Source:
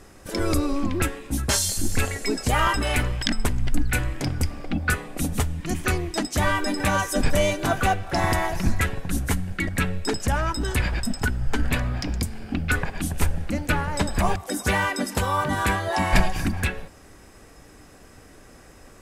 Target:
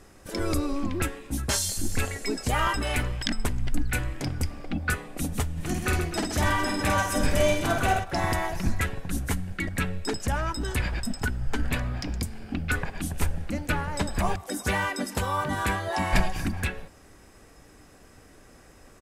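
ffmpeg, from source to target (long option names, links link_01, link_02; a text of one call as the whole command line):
ffmpeg -i in.wav -filter_complex "[0:a]asplit=3[link_01][link_02][link_03];[link_01]afade=type=out:start_time=5.56:duration=0.02[link_04];[link_02]aecho=1:1:50|130|258|462.8|790.5:0.631|0.398|0.251|0.158|0.1,afade=type=in:start_time=5.56:duration=0.02,afade=type=out:start_time=8.03:duration=0.02[link_05];[link_03]afade=type=in:start_time=8.03:duration=0.02[link_06];[link_04][link_05][link_06]amix=inputs=3:normalize=0,volume=-4dB" out.wav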